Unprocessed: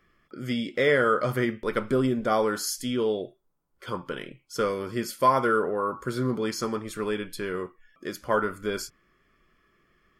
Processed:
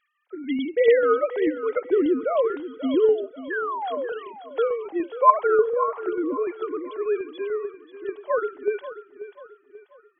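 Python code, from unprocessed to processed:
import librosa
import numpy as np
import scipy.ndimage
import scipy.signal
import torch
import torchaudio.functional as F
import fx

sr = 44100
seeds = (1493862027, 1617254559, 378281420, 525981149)

p1 = fx.sine_speech(x, sr)
p2 = fx.peak_eq(p1, sr, hz=1500.0, db=-8.0, octaves=0.95)
p3 = fx.spec_paint(p2, sr, seeds[0], shape='fall', start_s=3.5, length_s=0.59, low_hz=450.0, high_hz=1800.0, level_db=-34.0)
p4 = fx.tremolo_shape(p3, sr, shape='saw_down', hz=6.8, depth_pct=40)
p5 = p4 + fx.echo_feedback(p4, sr, ms=537, feedback_pct=40, wet_db=-13, dry=0)
y = p5 * librosa.db_to_amplitude(7.0)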